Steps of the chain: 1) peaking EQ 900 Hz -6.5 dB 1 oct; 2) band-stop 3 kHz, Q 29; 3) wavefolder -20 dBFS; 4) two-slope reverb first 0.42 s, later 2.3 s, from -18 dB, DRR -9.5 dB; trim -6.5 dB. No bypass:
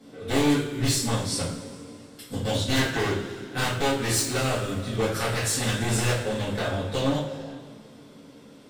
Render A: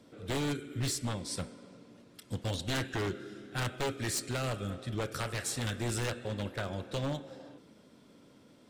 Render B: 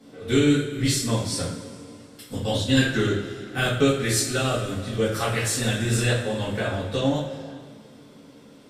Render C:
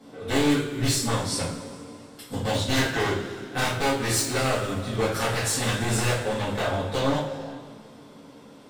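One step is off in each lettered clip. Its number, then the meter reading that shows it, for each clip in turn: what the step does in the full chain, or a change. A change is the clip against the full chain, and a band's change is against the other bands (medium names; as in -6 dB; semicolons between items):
4, crest factor change -6.5 dB; 3, distortion -4 dB; 1, 1 kHz band +2.5 dB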